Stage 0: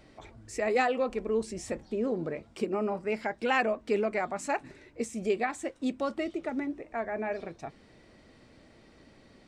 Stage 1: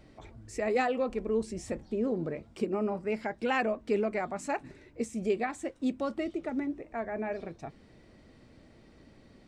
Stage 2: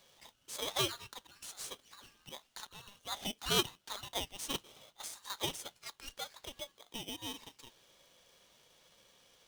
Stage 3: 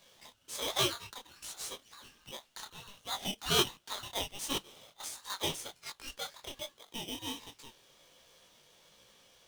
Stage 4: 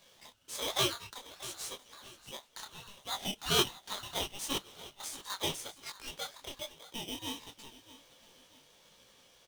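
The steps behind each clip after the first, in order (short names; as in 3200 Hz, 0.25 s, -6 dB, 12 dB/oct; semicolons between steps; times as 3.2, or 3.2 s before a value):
low shelf 360 Hz +6.5 dB; gain -3.5 dB
elliptic high-pass 1500 Hz, stop band 40 dB; polarity switched at an audio rate 1400 Hz; gain +4 dB
detuned doubles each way 46 cents; gain +6.5 dB
feedback echo 0.635 s, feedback 37%, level -17 dB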